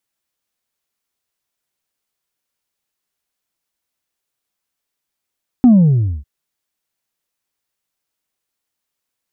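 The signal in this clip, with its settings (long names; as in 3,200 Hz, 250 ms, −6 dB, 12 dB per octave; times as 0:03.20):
bass drop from 260 Hz, over 0.60 s, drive 1.5 dB, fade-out 0.60 s, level −4.5 dB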